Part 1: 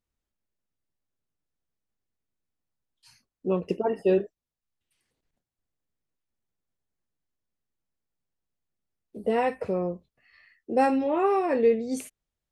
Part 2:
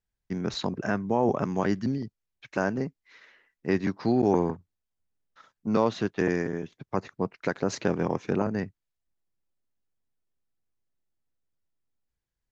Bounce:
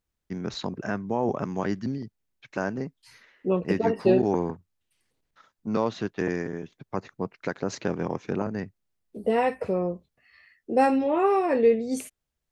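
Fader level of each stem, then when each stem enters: +1.5, -2.0 dB; 0.00, 0.00 s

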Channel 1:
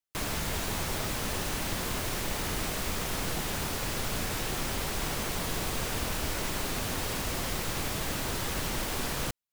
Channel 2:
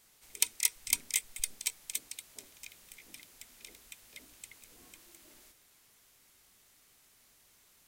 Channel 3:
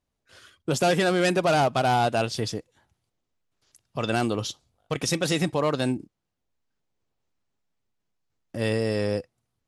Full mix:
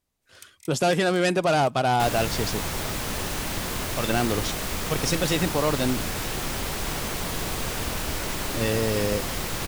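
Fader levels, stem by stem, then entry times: +3.0, -20.0, 0.0 dB; 1.85, 0.00, 0.00 s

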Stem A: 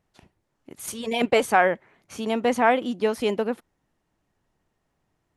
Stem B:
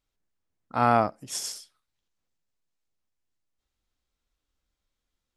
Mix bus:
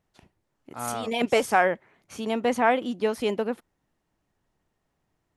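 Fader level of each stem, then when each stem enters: -2.0, -11.5 dB; 0.00, 0.00 s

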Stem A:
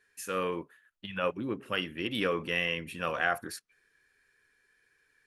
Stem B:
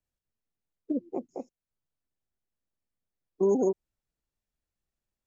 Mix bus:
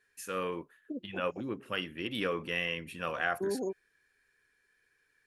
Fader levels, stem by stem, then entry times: -3.0, -9.5 dB; 0.00, 0.00 s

